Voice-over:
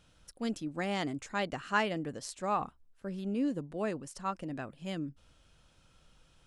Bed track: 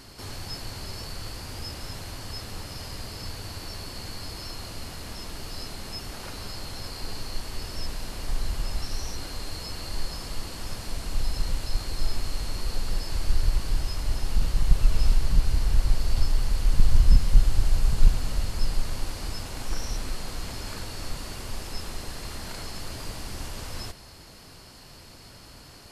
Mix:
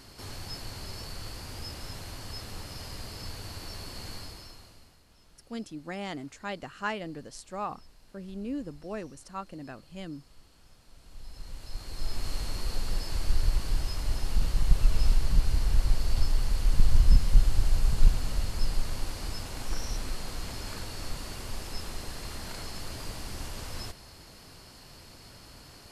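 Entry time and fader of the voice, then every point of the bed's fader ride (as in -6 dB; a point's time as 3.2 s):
5.10 s, -3.0 dB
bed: 4.16 s -3.5 dB
5.06 s -24 dB
10.86 s -24 dB
12.29 s -2.5 dB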